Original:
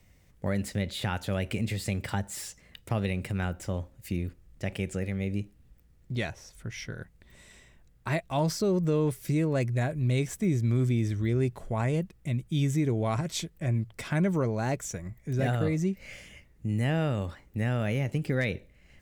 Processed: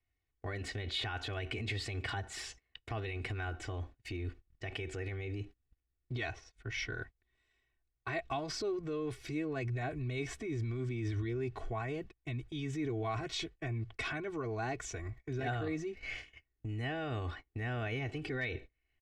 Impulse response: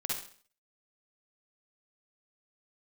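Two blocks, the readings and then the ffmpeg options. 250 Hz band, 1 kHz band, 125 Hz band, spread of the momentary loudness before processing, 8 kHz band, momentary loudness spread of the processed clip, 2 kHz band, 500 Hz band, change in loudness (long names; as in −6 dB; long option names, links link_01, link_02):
−11.0 dB, −5.0 dB, −10.5 dB, 12 LU, −9.5 dB, 7 LU, −2.5 dB, −8.0 dB, −9.0 dB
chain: -af "alimiter=level_in=4dB:limit=-24dB:level=0:latency=1:release=35,volume=-4dB,aecho=1:1:2.7:0.97,agate=range=-25dB:threshold=-44dB:ratio=16:detection=peak,lowpass=3400,tiltshelf=frequency=1100:gain=-3.5"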